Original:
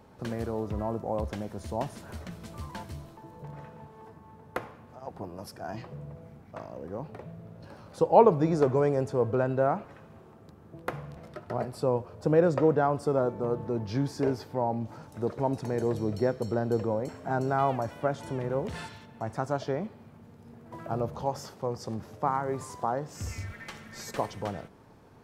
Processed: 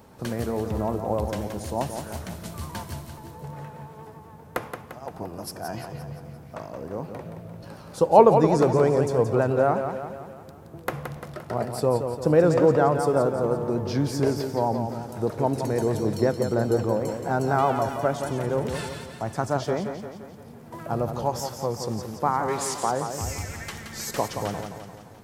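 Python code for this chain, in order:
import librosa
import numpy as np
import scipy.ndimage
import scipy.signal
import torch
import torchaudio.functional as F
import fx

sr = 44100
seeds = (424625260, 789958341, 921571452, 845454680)

p1 = fx.weighting(x, sr, curve='D', at=(22.48, 22.9))
p2 = p1 + fx.echo_feedback(p1, sr, ms=173, feedback_pct=53, wet_db=-7.5, dry=0)
p3 = fx.vibrato(p2, sr, rate_hz=8.0, depth_cents=44.0)
p4 = fx.high_shelf(p3, sr, hz=6600.0, db=11.0)
y = F.gain(torch.from_numpy(p4), 4.0).numpy()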